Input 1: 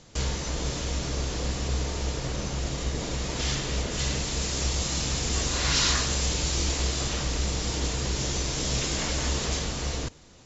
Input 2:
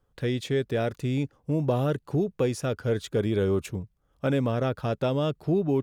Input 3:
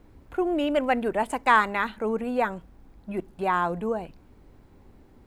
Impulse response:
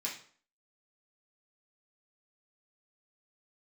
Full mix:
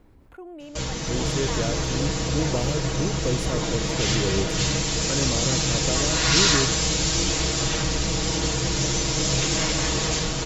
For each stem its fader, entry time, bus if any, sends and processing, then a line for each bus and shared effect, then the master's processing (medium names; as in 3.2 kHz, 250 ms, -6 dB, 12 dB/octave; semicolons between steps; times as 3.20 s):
-1.5 dB, 0.60 s, no send, level rider gain up to 5 dB; comb 6.3 ms, depth 78%
-1.5 dB, 0.85 s, no send, rotary cabinet horn 1.1 Hz
-19.5 dB, 0.00 s, no send, level flattener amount 50%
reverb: none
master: none